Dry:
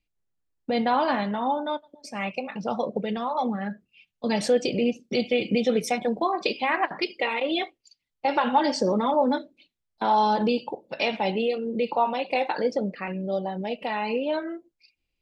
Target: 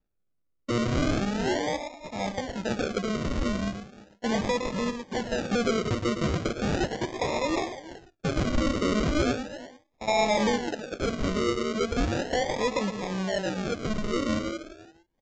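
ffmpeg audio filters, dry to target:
-filter_complex "[0:a]asettb=1/sr,asplit=3[a][b][c];[a]atrim=end=4.504[d];[b]atrim=start=4.5:end=5.5,asetpts=PTS-STARTPTS,afade=t=in:d=0.004:c=qsin,afade=t=out:st=0.996:d=0.004:c=qsin,equalizer=f=350:t=o:w=0.79:g=-12.5[e];[c]atrim=start=5.496[f];[d][e]acrossfade=d=0.004:c1=hsin:c2=qsin[g];[g][f]acrossfade=d=0.004:c1=qsin:c2=hsin,asettb=1/sr,asplit=3[h][i][j];[h]atrim=end=9.314[k];[i]atrim=start=9.31:end=10.08,asetpts=PTS-STARTPTS,afade=t=in:d=0.004:c=qsin,afade=t=out:st=0.766:d=0.004:c=qsin,acompressor=threshold=-38dB:ratio=3[l];[j]atrim=start=10.076[m];[k][l]acrossfade=d=0.004:c1=hsin:c2=qsin[n];[n][m]acrossfade=d=0.004:c1=qsin:c2=hsin,asplit=2[o][p];[p]adelay=340,highpass=300,lowpass=3.4k,asoftclip=type=hard:threshold=-19.5dB,volume=-16dB[q];[o][q]amix=inputs=2:normalize=0,asoftclip=type=tanh:threshold=-19.5dB,asplit=2[r][s];[s]aecho=0:1:112:0.376[t];[r][t]amix=inputs=2:normalize=0,acrusher=samples=41:mix=1:aa=0.000001:lfo=1:lforange=24.6:lforate=0.37,aresample=16000,aresample=44100"

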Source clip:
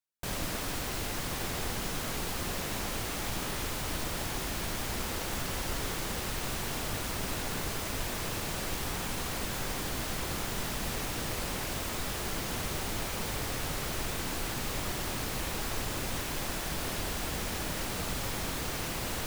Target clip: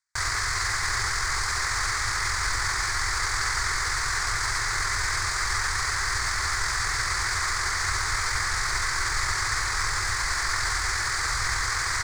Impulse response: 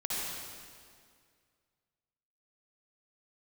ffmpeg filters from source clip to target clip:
-filter_complex "[0:a]firequalizer=gain_entry='entry(110,0);entry(180,-30);entry(370,-10);entry(560,-15);entry(1100,6);entry(2000,10);entry(2800,-12);entry(4600,13);entry(6500,11);entry(13000,-25)':delay=0.05:min_phase=1,asplit=2[a][b];[1:a]atrim=start_sample=2205,lowpass=3.4k,adelay=77[c];[b][c]afir=irnorm=-1:irlink=0,volume=-13dB[d];[a][d]amix=inputs=2:normalize=0,aexciter=amount=3.3:drive=6.9:freq=7.9k,bass=f=250:g=-2,treble=f=4k:g=-8,acontrast=85,atempo=1.6"

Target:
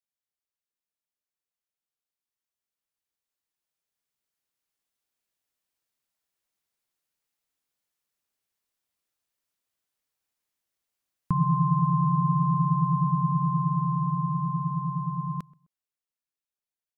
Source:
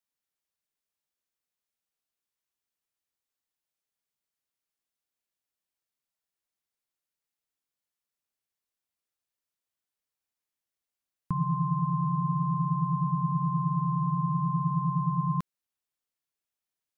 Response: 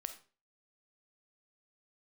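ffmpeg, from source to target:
-filter_complex "[0:a]asplit=2[a][b];[b]adelay=129,lowpass=f=1.1k:p=1,volume=-23dB,asplit=2[c][d];[d]adelay=129,lowpass=f=1.1k:p=1,volume=0.34[e];[a][c][e]amix=inputs=3:normalize=0,dynaudnorm=f=450:g=17:m=12dB,volume=-7dB"

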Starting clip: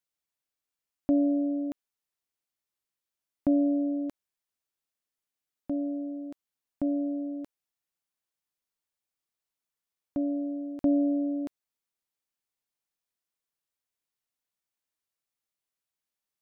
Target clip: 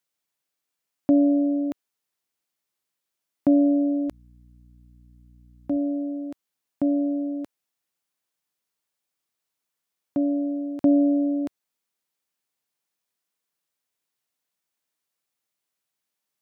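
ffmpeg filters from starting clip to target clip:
-filter_complex "[0:a]highpass=110,asettb=1/sr,asplit=3[a][b][c];[a]atrim=end=4.084[d];[b]atrim=start=4.08:end=5.77,asetpts=PTS-STARTPTS,afade=t=in:d=0.004:c=qsin,afade=t=out:st=1.686:d=0.004:c=qsin,aeval=exprs='val(0)+0.00141*(sin(2*PI*60*n/s)+sin(2*PI*2*60*n/s)/2+sin(2*PI*3*60*n/s)/3+sin(2*PI*4*60*n/s)/4+sin(2*PI*5*60*n/s)/5)':c=same[e];[c]atrim=start=5.766[f];[d][e]acrossfade=d=0.004:c1=hsin:c2=qsin[g];[g][f]acrossfade=d=0.004:c1=qsin:c2=hsin,volume=6dB"

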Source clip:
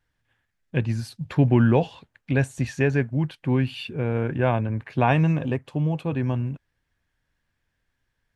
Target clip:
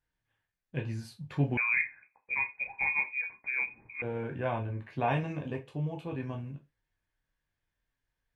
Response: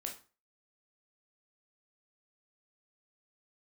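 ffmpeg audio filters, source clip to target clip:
-filter_complex "[1:a]atrim=start_sample=2205,asetrate=70560,aresample=44100[a];[0:a][a]afir=irnorm=-1:irlink=0,asettb=1/sr,asplit=3[b][c][d];[b]atrim=end=1.574[e];[c]atrim=start=1.57:end=4.02,asetpts=PTS-STARTPTS,afade=t=in:d=0.004:c=qsin,afade=t=out:st=2.446:d=0.004:c=qsin,lowpass=f=2.2k:t=q:w=0.5098,lowpass=f=2.2k:t=q:w=0.6013,lowpass=f=2.2k:t=q:w=0.9,lowpass=f=2.2k:t=q:w=2.563,afreqshift=-2600[f];[d]atrim=start=4.016[g];[e][f]acrossfade=d=0.004:c1=hsin:c2=qsin[h];[h][g]acrossfade=d=0.004:c1=qsin:c2=hsin,volume=-3.5dB"

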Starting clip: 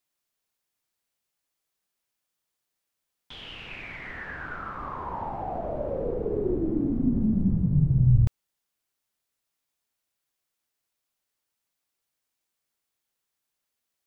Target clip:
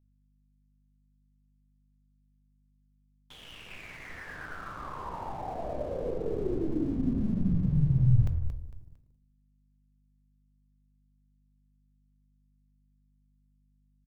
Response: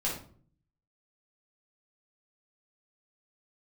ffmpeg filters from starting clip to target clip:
-filter_complex "[0:a]asplit=5[a][b][c][d][e];[b]adelay=227,afreqshift=-43,volume=-9dB[f];[c]adelay=454,afreqshift=-86,volume=-18.4dB[g];[d]adelay=681,afreqshift=-129,volume=-27.7dB[h];[e]adelay=908,afreqshift=-172,volume=-37.1dB[i];[a][f][g][h][i]amix=inputs=5:normalize=0,aeval=exprs='sgn(val(0))*max(abs(val(0))-0.00355,0)':c=same,aeval=exprs='val(0)+0.000794*(sin(2*PI*50*n/s)+sin(2*PI*2*50*n/s)/2+sin(2*PI*3*50*n/s)/3+sin(2*PI*4*50*n/s)/4+sin(2*PI*5*50*n/s)/5)':c=same,asplit=2[j][k];[1:a]atrim=start_sample=2205[l];[k][l]afir=irnorm=-1:irlink=0,volume=-15dB[m];[j][m]amix=inputs=2:normalize=0,volume=-5.5dB"

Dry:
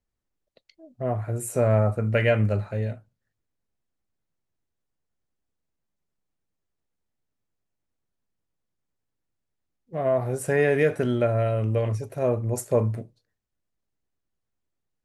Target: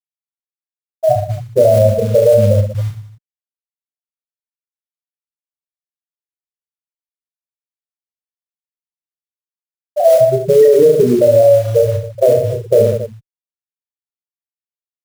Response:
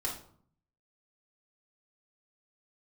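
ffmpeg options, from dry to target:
-filter_complex "[0:a]afftfilt=real='re*gte(hypot(re,im),0.398)':imag='im*gte(hypot(re,im),0.398)':win_size=1024:overlap=0.75,lowpass=f=1.8k:w=0.5412,lowpass=f=1.8k:w=1.3066,equalizer=f=74:w=0.34:g=-11.5,acrusher=bits=6:mode=log:mix=0:aa=0.000001,asplit=2[a][b];[b]aecho=0:1:30|69|119.7|185.6|271.3:0.631|0.398|0.251|0.158|0.1[c];[a][c]amix=inputs=2:normalize=0,alimiter=level_in=21dB:limit=-1dB:release=50:level=0:latency=1,volume=-1dB"

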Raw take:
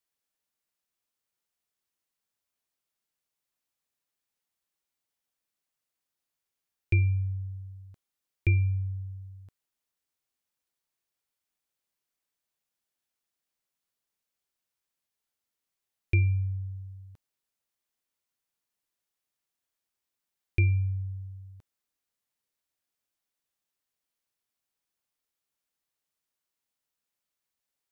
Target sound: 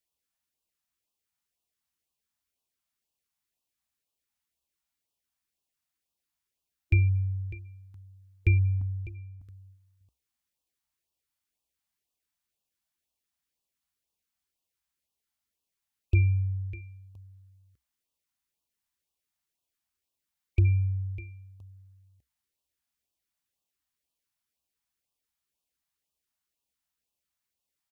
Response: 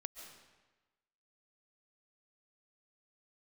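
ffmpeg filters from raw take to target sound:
-filter_complex "[0:a]asettb=1/sr,asplit=3[a][b][c];[a]atrim=end=8.814[d];[b]atrim=start=8.81:end=9.41,asetpts=PTS-STARTPTS,afade=t=in:d=0.004:c=qsin,afade=t=out:st=0.596:d=0.004:c=qsin,agate=range=-7dB:threshold=-40dB:ratio=16:detection=peak[e];[c]atrim=start=9.406[f];[d][e]acrossfade=d=0.004:c1=hsin:c2=qsin[g];[g][f]acrossfade=d=0.004:c1=qsin:c2=hsin,equalizer=f=63:t=o:w=0.41:g=11,asplit=2[h][i];[i]aecho=0:1:601:0.168[j];[h][j]amix=inputs=2:normalize=0,afftfilt=real='re*(1-between(b*sr/1024,390*pow(1800/390,0.5+0.5*sin(2*PI*2*pts/sr))/1.41,390*pow(1800/390,0.5+0.5*sin(2*PI*2*pts/sr))*1.41))':imag='im*(1-between(b*sr/1024,390*pow(1800/390,0.5+0.5*sin(2*PI*2*pts/sr))/1.41,390*pow(1800/390,0.5+0.5*sin(2*PI*2*pts/sr))*1.41))':win_size=1024:overlap=0.75"

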